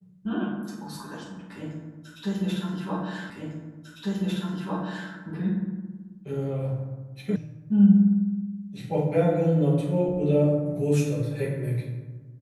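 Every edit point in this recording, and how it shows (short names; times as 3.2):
3.3 repeat of the last 1.8 s
7.36 sound cut off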